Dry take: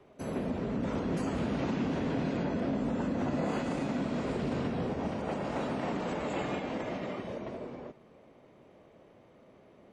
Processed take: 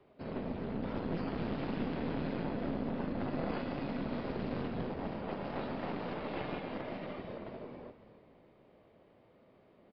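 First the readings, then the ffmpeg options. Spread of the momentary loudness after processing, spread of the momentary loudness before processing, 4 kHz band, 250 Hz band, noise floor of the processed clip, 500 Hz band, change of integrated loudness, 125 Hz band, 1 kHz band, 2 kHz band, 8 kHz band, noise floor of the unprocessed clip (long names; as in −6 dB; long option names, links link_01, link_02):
7 LU, 7 LU, −4.5 dB, −5.0 dB, −64 dBFS, −5.0 dB, −5.0 dB, −4.5 dB, −4.5 dB, −4.5 dB, below −25 dB, −59 dBFS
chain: -filter_complex "[0:a]asplit=6[link_01][link_02][link_03][link_04][link_05][link_06];[link_02]adelay=281,afreqshift=-37,volume=-14dB[link_07];[link_03]adelay=562,afreqshift=-74,volume=-20dB[link_08];[link_04]adelay=843,afreqshift=-111,volume=-26dB[link_09];[link_05]adelay=1124,afreqshift=-148,volume=-32.1dB[link_10];[link_06]adelay=1405,afreqshift=-185,volume=-38.1dB[link_11];[link_01][link_07][link_08][link_09][link_10][link_11]amix=inputs=6:normalize=0,aeval=exprs='0.0841*(cos(1*acos(clip(val(0)/0.0841,-1,1)))-cos(1*PI/2))+0.0335*(cos(2*acos(clip(val(0)/0.0841,-1,1)))-cos(2*PI/2))':channel_layout=same,aresample=11025,aresample=44100,volume=-5.5dB"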